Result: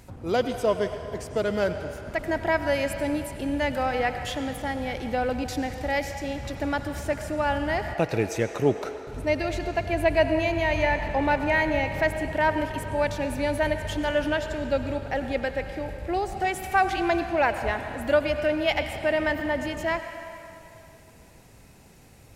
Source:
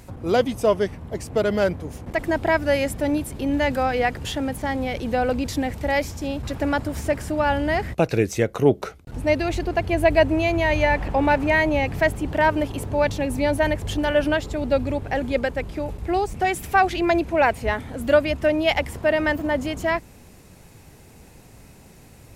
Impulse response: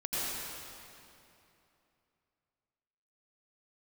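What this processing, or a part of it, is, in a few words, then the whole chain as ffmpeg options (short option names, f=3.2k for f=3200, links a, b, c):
filtered reverb send: -filter_complex "[0:a]asplit=2[a][b];[b]highpass=510,lowpass=8.7k[c];[1:a]atrim=start_sample=2205[d];[c][d]afir=irnorm=-1:irlink=0,volume=-12.5dB[e];[a][e]amix=inputs=2:normalize=0,bandreject=f=1.1k:w=29,volume=-5dB"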